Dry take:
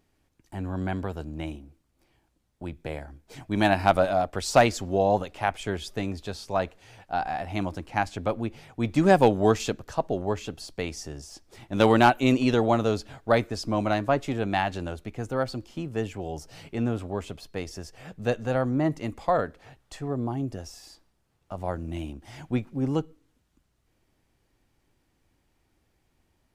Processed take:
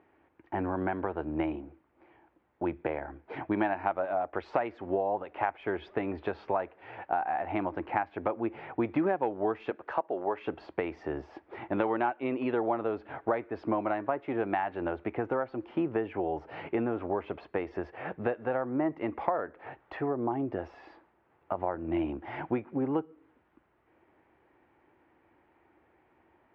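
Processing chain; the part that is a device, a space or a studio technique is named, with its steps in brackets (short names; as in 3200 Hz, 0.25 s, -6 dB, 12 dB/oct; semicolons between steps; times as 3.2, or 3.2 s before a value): 9.7–10.47 HPF 450 Hz 6 dB/oct; tone controls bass -14 dB, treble -3 dB; bass amplifier (compressor 6:1, threshold -38 dBFS, peak gain reduction 22.5 dB; speaker cabinet 66–2200 Hz, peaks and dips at 76 Hz +4 dB, 340 Hz +6 dB, 890 Hz +4 dB); gain +9 dB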